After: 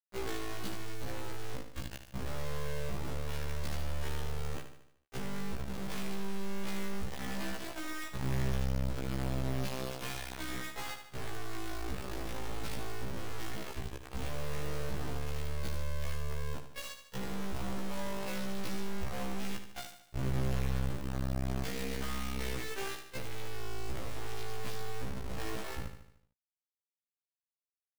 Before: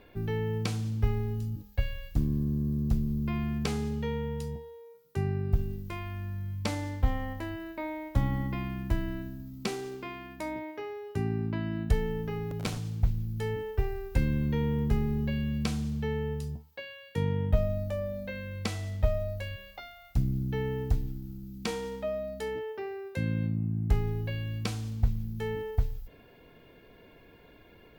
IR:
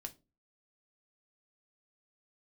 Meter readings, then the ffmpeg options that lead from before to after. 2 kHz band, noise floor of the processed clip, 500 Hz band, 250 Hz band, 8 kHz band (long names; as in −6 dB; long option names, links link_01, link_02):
−1.5 dB, below −85 dBFS, −7.0 dB, −7.5 dB, +3.0 dB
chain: -filter_complex "[0:a]highpass=84,asubboost=boost=5.5:cutoff=130,acompressor=threshold=-38dB:ratio=4,aresample=11025,asoftclip=type=tanh:threshold=-37dB,aresample=44100,acrusher=bits=4:dc=4:mix=0:aa=0.000001,asplit=2[link_01][link_02];[link_02]aecho=0:1:75|150|225|300|375|450:0.355|0.181|0.0923|0.0471|0.024|0.0122[link_03];[link_01][link_03]amix=inputs=2:normalize=0,afftfilt=real='re*1.73*eq(mod(b,3),0)':imag='im*1.73*eq(mod(b,3),0)':win_size=2048:overlap=0.75,volume=7.5dB"